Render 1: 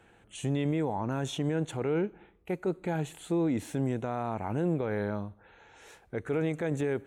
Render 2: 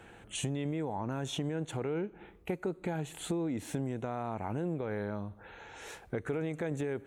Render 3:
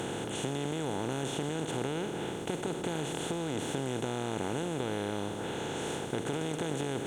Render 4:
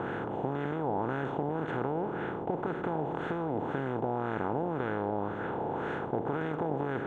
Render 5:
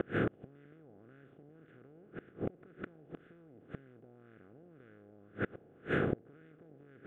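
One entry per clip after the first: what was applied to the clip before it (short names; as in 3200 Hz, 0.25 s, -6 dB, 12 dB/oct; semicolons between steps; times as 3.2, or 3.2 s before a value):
compressor 5:1, threshold -39 dBFS, peak gain reduction 13 dB; gain +6.5 dB
per-bin compression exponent 0.2; gain -6.5 dB
LFO low-pass sine 1.9 Hz 800–1600 Hz
flipped gate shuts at -25 dBFS, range -31 dB; fixed phaser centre 2200 Hz, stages 4; gain +8 dB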